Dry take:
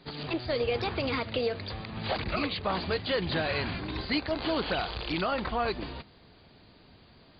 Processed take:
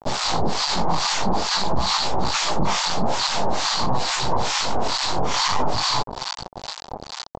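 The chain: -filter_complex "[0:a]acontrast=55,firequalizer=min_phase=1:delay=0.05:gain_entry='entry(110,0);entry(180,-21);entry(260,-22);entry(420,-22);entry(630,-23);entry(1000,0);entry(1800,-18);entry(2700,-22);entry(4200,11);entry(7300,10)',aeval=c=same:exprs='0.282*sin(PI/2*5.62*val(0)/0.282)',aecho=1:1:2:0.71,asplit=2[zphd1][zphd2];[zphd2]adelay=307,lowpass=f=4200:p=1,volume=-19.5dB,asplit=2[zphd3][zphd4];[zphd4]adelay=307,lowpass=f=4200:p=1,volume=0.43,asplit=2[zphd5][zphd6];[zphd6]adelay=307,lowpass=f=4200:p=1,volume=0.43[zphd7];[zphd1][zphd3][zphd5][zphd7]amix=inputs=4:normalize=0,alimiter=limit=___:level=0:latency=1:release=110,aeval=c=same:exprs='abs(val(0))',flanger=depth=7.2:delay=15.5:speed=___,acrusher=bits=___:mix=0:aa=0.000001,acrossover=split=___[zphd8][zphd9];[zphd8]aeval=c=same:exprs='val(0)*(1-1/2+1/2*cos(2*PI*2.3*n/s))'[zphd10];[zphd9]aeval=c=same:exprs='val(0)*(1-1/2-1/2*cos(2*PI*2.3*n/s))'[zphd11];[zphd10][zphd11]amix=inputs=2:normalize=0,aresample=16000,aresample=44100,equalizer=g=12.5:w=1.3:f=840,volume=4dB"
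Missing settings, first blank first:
-13dB, 0.48, 3, 960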